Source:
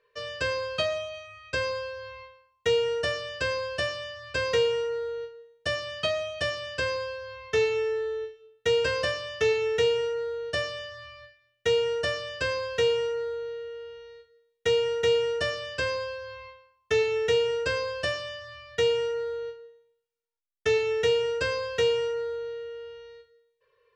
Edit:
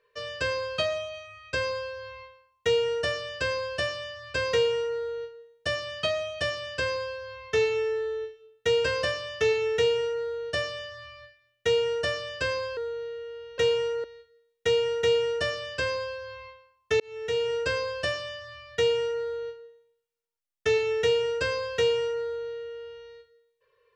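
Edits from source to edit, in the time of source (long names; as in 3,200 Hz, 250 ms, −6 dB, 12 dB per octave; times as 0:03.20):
0:12.77–0:13.23: move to 0:14.04
0:17.00–0:17.56: fade in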